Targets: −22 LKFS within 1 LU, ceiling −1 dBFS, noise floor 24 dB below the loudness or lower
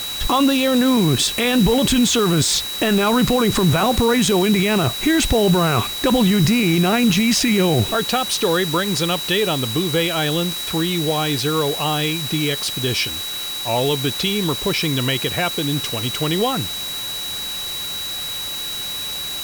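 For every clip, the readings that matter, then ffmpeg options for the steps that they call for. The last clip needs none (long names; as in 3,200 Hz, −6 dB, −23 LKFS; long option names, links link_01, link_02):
interfering tone 3,900 Hz; level of the tone −26 dBFS; background noise floor −27 dBFS; target noise floor −43 dBFS; integrated loudness −18.5 LKFS; sample peak −6.5 dBFS; target loudness −22.0 LKFS
→ -af "bandreject=frequency=3900:width=30"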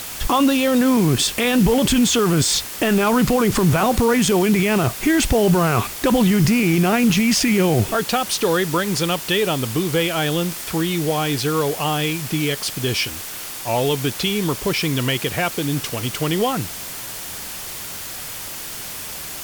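interfering tone none found; background noise floor −32 dBFS; target noise floor −43 dBFS
→ -af "afftdn=noise_reduction=11:noise_floor=-32"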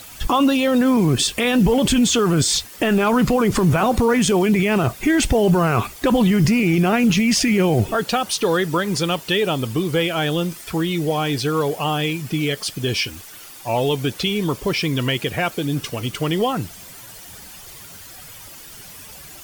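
background noise floor −40 dBFS; target noise floor −43 dBFS
→ -af "afftdn=noise_reduction=6:noise_floor=-40"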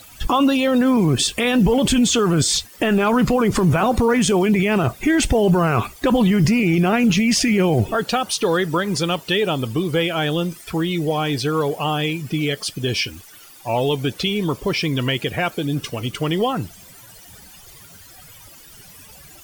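background noise floor −44 dBFS; integrated loudness −19.0 LKFS; sample peak −8.0 dBFS; target loudness −22.0 LKFS
→ -af "volume=-3dB"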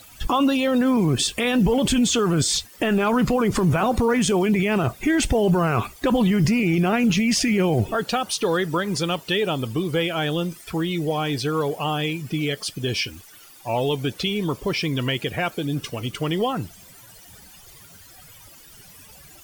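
integrated loudness −22.0 LKFS; sample peak −11.0 dBFS; background noise floor −47 dBFS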